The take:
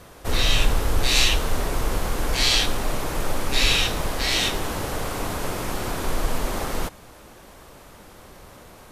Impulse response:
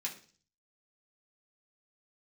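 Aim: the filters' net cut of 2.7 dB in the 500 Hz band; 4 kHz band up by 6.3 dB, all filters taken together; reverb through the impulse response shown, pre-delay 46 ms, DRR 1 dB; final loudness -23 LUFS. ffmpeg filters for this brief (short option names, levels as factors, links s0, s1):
-filter_complex "[0:a]equalizer=f=500:t=o:g=-3.5,equalizer=f=4000:t=o:g=7.5,asplit=2[s0][s1];[1:a]atrim=start_sample=2205,adelay=46[s2];[s1][s2]afir=irnorm=-1:irlink=0,volume=0.794[s3];[s0][s3]amix=inputs=2:normalize=0,volume=0.501"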